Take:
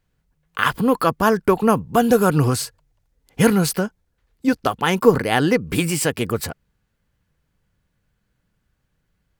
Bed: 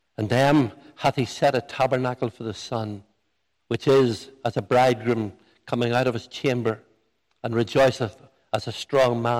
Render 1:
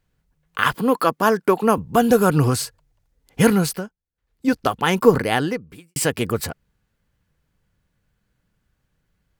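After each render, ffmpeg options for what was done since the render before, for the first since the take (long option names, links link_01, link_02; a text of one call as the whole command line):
ffmpeg -i in.wav -filter_complex "[0:a]asettb=1/sr,asplit=3[link_01][link_02][link_03];[link_01]atrim=end=0.744[link_04];[link_02]atrim=start=0.74:end=1.78,asetpts=PTS-STARTPTS,afade=type=in:duration=0.004:curve=qsin,afade=type=out:start_time=1.036:duration=0.004:curve=qsin,highpass=210[link_05];[link_03]atrim=start=1.776[link_06];[link_04][link_05]acrossfade=duration=0.004:curve1=hsin:curve2=qsin[link_07];[link_07][link_06]acrossfade=duration=0.004:curve1=qsin:curve2=hsin,asplit=4[link_08][link_09][link_10][link_11];[link_08]atrim=end=3.96,asetpts=PTS-STARTPTS,afade=type=out:start_time=3.56:duration=0.4:silence=0.0891251[link_12];[link_09]atrim=start=3.96:end=4.13,asetpts=PTS-STARTPTS,volume=-21dB[link_13];[link_10]atrim=start=4.13:end=5.96,asetpts=PTS-STARTPTS,afade=type=in:duration=0.4:silence=0.0891251,afade=type=out:start_time=1.16:duration=0.67:curve=qua[link_14];[link_11]atrim=start=5.96,asetpts=PTS-STARTPTS,afade=type=in:duration=0.004:curve=hsin[link_15];[link_12][link_13][link_14][link_15]concat=n=4:v=0:a=1" out.wav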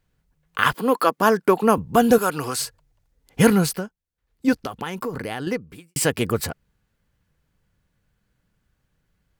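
ffmpeg -i in.wav -filter_complex "[0:a]asettb=1/sr,asplit=3[link_01][link_02][link_03];[link_01]atrim=end=0.734[link_04];[link_02]atrim=start=0.73:end=1.18,asetpts=PTS-STARTPTS,afade=type=in:duration=0.004:curve=qsin,afade=type=out:start_time=0.446:duration=0.004:curve=qsin,highpass=260[link_05];[link_03]atrim=start=1.176[link_06];[link_04][link_05]acrossfade=duration=0.004:curve1=hsin:curve2=qsin[link_07];[link_07][link_06]acrossfade=duration=0.004:curve1=qsin:curve2=hsin,asettb=1/sr,asplit=3[link_08][link_09][link_10];[link_08]atrim=end=2.184[link_11];[link_09]atrim=start=2.18:end=2.59,asetpts=PTS-STARTPTS,afade=type=in:duration=0.004:curve=qsin,afade=type=out:start_time=0.406:duration=0.004:curve=qsin,highpass=frequency=890:poles=1[link_12];[link_10]atrim=start=2.586[link_13];[link_11][link_12]acrossfade=duration=0.004:curve1=hsin:curve2=qsin[link_14];[link_14][link_13]acrossfade=duration=0.004:curve1=qsin:curve2=hsin,asettb=1/sr,asplit=3[link_15][link_16][link_17];[link_15]atrim=end=4.534[link_18];[link_16]atrim=start=4.53:end=5.47,asetpts=PTS-STARTPTS,afade=type=in:duration=0.004:curve=qsin,afade=type=out:start_time=0.936:duration=0.004:curve=qsin,acompressor=threshold=-26dB:ratio=5:attack=3.2:release=140:knee=1:detection=peak[link_19];[link_17]atrim=start=5.466[link_20];[link_18][link_19]acrossfade=duration=0.004:curve1=hsin:curve2=qsin[link_21];[link_21][link_20]acrossfade=duration=0.004:curve1=qsin:curve2=hsin" out.wav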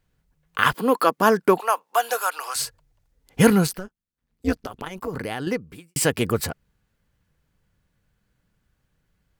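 ffmpeg -i in.wav -filter_complex "[0:a]asettb=1/sr,asplit=3[link_01][link_02][link_03];[link_01]atrim=end=1.604[link_04];[link_02]atrim=start=1.6:end=2.56,asetpts=PTS-STARTPTS,afade=type=in:duration=0.004:curve=qsin,afade=type=out:start_time=0.956:duration=0.004:curve=qsin,highpass=frequency=680:width=0.5412,highpass=frequency=680:width=1.3066[link_05];[link_03]atrim=start=2.556[link_06];[link_04][link_05]acrossfade=duration=0.004:curve1=hsin:curve2=qsin[link_07];[link_07][link_06]acrossfade=duration=0.004:curve1=qsin:curve2=hsin,asettb=1/sr,asplit=3[link_08][link_09][link_10];[link_08]atrim=end=3.674[link_11];[link_09]atrim=start=3.67:end=5.08,asetpts=PTS-STARTPTS,afade=type=in:duration=0.004:curve=qsin,afade=type=out:start_time=1.406:duration=0.004:curve=qsin,tremolo=f=190:d=0.889[link_12];[link_10]atrim=start=5.076[link_13];[link_11][link_12]acrossfade=duration=0.004:curve1=hsin:curve2=qsin[link_14];[link_14][link_13]acrossfade=duration=0.004:curve1=qsin:curve2=hsin" out.wav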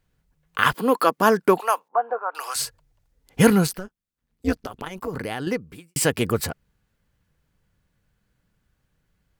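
ffmpeg -i in.wav -filter_complex "[0:a]asettb=1/sr,asplit=3[link_01][link_02][link_03];[link_01]atrim=end=1.884[link_04];[link_02]atrim=start=1.88:end=2.35,asetpts=PTS-STARTPTS,afade=type=in:duration=0.004:curve=qsin,afade=type=out:start_time=0.466:duration=0.004:curve=qsin,lowpass=frequency=1200:width=0.5412,lowpass=frequency=1200:width=1.3066[link_05];[link_03]atrim=start=2.346[link_06];[link_04][link_05]acrossfade=duration=0.004:curve1=hsin:curve2=qsin[link_07];[link_07][link_06]acrossfade=duration=0.004:curve1=qsin:curve2=hsin" out.wav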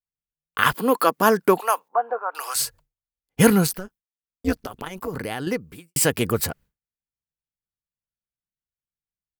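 ffmpeg -i in.wav -af "agate=range=-33dB:threshold=-43dB:ratio=3:detection=peak,highshelf=frequency=11000:gain=9.5" out.wav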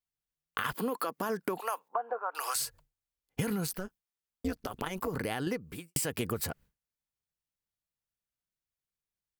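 ffmpeg -i in.wav -af "alimiter=limit=-12.5dB:level=0:latency=1:release=30,acompressor=threshold=-30dB:ratio=6" out.wav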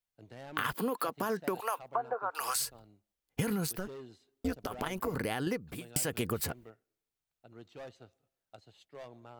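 ffmpeg -i in.wav -i bed.wav -filter_complex "[1:a]volume=-29dB[link_01];[0:a][link_01]amix=inputs=2:normalize=0" out.wav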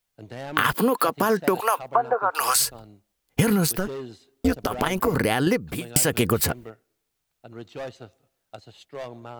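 ffmpeg -i in.wav -af "volume=12dB" out.wav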